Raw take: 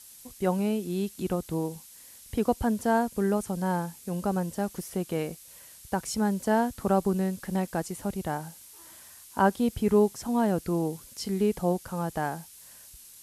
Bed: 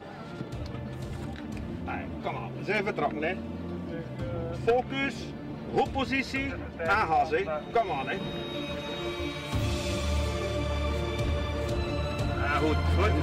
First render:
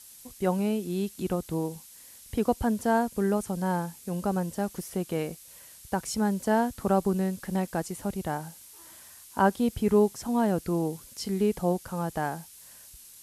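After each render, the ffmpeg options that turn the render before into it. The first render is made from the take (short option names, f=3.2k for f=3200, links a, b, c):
-af anull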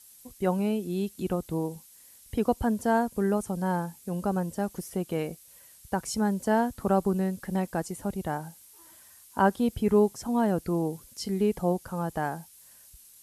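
-af "afftdn=nr=6:nf=-50"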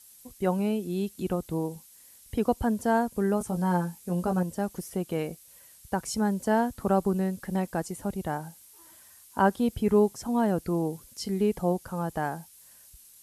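-filter_complex "[0:a]asettb=1/sr,asplit=3[a][b][c];[a]atrim=end=3.394[d];[b]atrim=start=3.39:end=4.43,asetpts=PTS-STARTPTS,afade=t=in:d=0.004:c=qsin,afade=t=out:st=1.036:d=0.004:c=qsin,asplit=2[e][f];[f]adelay=17,volume=-5dB[g];[e][g]amix=inputs=2:normalize=0,atrim=end_sample=45864[h];[c]atrim=start=4.426[i];[d][h]acrossfade=d=0.004:c1=hsin:c2=qsin[j];[j][i]acrossfade=d=0.004:c1=qsin:c2=hsin"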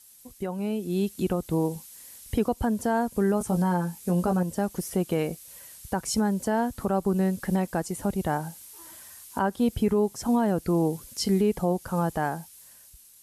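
-af "alimiter=limit=-22dB:level=0:latency=1:release=315,dynaudnorm=f=150:g=13:m=7dB"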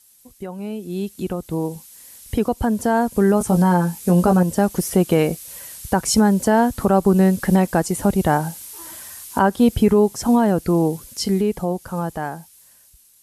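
-af "dynaudnorm=f=260:g=21:m=10dB"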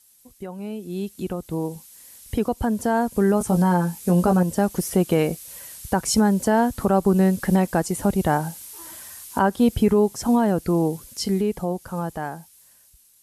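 -af "volume=-3dB"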